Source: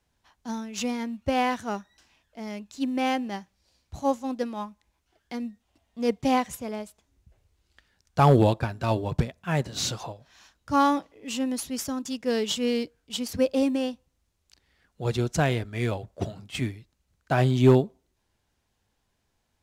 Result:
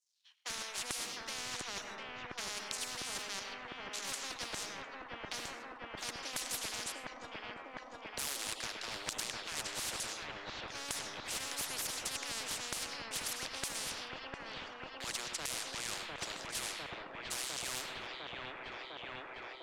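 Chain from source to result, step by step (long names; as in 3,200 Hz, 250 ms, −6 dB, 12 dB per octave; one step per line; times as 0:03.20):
mu-law and A-law mismatch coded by A
noise gate −52 dBFS, range −21 dB
elliptic high-pass filter 310 Hz
in parallel at −2.5 dB: output level in coarse steps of 23 dB
on the sum: auto-filter high-pass saw down 1.1 Hz 470–7,200 Hz
reversed playback
downward compressor 8 to 1, threshold −37 dBFS, peak gain reduction 26 dB
reversed playback
hard clipping −33 dBFS, distortion −15 dB
high-frequency loss of the air 61 metres
delay with a low-pass on its return 703 ms, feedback 61%, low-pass 1,000 Hz, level −3.5 dB
convolution reverb RT60 0.80 s, pre-delay 55 ms, DRR 14.5 dB
every bin compressed towards the loudest bin 10 to 1
level +14 dB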